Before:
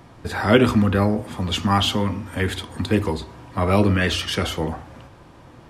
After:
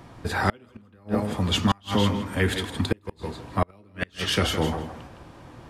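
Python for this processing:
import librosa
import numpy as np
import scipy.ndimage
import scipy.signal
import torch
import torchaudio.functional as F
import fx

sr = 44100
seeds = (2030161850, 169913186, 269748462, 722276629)

y = fx.echo_feedback(x, sr, ms=162, feedback_pct=17, wet_db=-9)
y = fx.gate_flip(y, sr, shuts_db=-9.0, range_db=-36)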